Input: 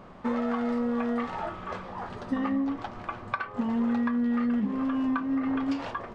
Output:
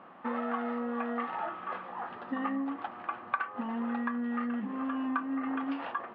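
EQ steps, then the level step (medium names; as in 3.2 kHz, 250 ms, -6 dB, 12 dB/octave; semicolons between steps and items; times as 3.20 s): cabinet simulation 420–2600 Hz, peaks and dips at 420 Hz -10 dB, 600 Hz -8 dB, 980 Hz -5 dB, 1.5 kHz -3 dB, 2.2 kHz -7 dB; +3.5 dB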